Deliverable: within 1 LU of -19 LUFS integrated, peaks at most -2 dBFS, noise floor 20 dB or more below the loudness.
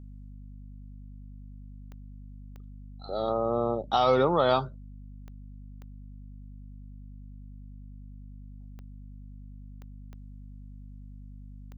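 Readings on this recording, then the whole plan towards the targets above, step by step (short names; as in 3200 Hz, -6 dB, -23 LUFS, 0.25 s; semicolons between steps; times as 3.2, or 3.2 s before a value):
clicks 8; hum 50 Hz; harmonics up to 250 Hz; hum level -42 dBFS; loudness -26.0 LUFS; peak -11.5 dBFS; loudness target -19.0 LUFS
-> de-click; de-hum 50 Hz, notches 5; gain +7 dB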